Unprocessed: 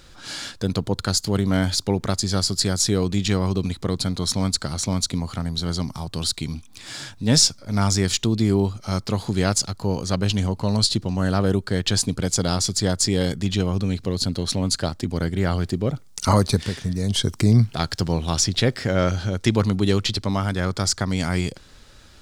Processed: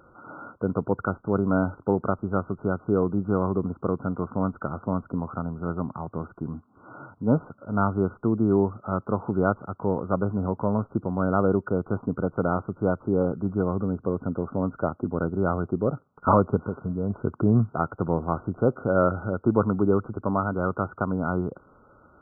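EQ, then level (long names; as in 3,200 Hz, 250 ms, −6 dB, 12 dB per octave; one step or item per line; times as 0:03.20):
high-pass filter 350 Hz 6 dB per octave
linear-phase brick-wall low-pass 1,500 Hz
parametric band 810 Hz −2.5 dB
+3.5 dB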